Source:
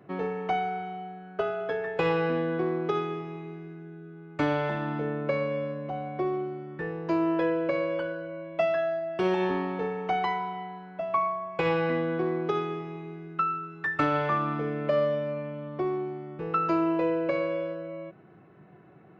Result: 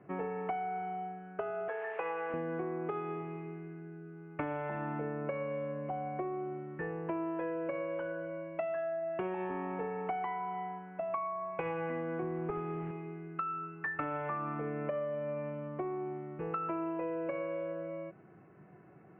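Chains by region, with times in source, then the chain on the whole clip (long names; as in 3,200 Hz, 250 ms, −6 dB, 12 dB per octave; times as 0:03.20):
0:01.68–0:02.34: linear delta modulator 64 kbit/s, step −33 dBFS + band-pass filter 540–2,800 Hz
0:12.22–0:12.91: linear delta modulator 32 kbit/s, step −40 dBFS + bass and treble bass +7 dB, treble −15 dB
whole clip: Butterworth low-pass 2,700 Hz 48 dB per octave; dynamic equaliser 810 Hz, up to +4 dB, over −42 dBFS, Q 1.6; downward compressor, threshold −30 dBFS; level −3.5 dB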